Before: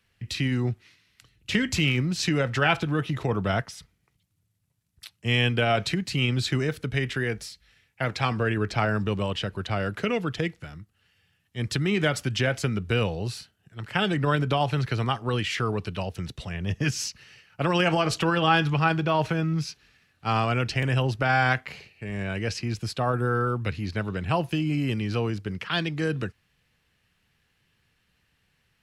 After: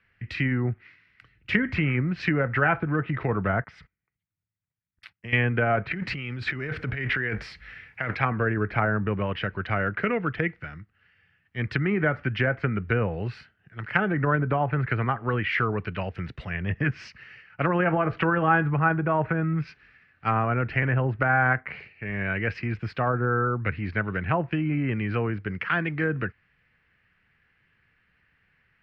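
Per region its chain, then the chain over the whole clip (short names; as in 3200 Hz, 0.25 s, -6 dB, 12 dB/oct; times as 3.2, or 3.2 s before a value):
3.64–5.33 gate -57 dBFS, range -17 dB + compressor 5:1, threshold -36 dBFS
5.91–8.15 G.711 law mismatch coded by mu + negative-ratio compressor -31 dBFS
whole clip: EQ curve 920 Hz 0 dB, 1500 Hz +7 dB, 3700 Hz -23 dB; treble ducked by the level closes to 1200 Hz, closed at -20 dBFS; band shelf 3200 Hz +12.5 dB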